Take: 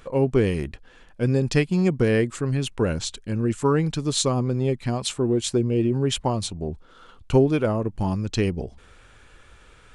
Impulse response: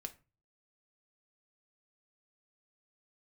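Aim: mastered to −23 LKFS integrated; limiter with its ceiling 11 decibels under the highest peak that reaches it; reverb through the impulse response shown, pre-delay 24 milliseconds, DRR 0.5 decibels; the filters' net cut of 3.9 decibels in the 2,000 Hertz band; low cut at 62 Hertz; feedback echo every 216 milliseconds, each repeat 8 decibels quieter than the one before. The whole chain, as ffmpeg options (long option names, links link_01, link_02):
-filter_complex "[0:a]highpass=62,equalizer=frequency=2000:width_type=o:gain=-5,alimiter=limit=-17.5dB:level=0:latency=1,aecho=1:1:216|432|648|864|1080:0.398|0.159|0.0637|0.0255|0.0102,asplit=2[link_01][link_02];[1:a]atrim=start_sample=2205,adelay=24[link_03];[link_02][link_03]afir=irnorm=-1:irlink=0,volume=3dB[link_04];[link_01][link_04]amix=inputs=2:normalize=0,volume=0.5dB"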